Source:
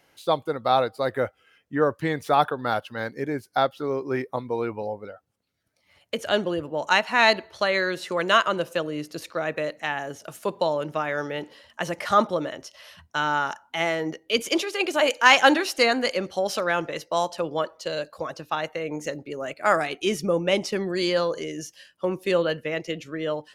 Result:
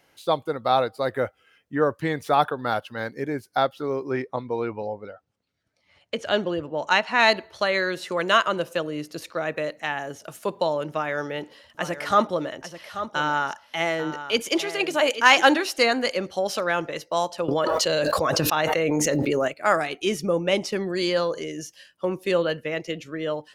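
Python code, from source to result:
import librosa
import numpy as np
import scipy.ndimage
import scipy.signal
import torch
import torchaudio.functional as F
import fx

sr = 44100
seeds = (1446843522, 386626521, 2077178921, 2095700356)

y = fx.lowpass(x, sr, hz=6500.0, slope=12, at=(4.11, 7.2))
y = fx.echo_single(y, sr, ms=836, db=-11.5, at=(10.91, 15.5))
y = fx.env_flatten(y, sr, amount_pct=100, at=(17.48, 19.48))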